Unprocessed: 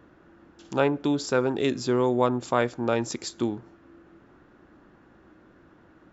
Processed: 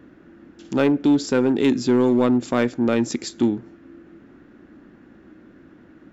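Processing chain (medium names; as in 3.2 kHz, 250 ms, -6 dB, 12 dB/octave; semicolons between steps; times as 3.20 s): graphic EQ 250/1000/2000 Hz +9/-5/+4 dB; in parallel at -10 dB: wavefolder -16.5 dBFS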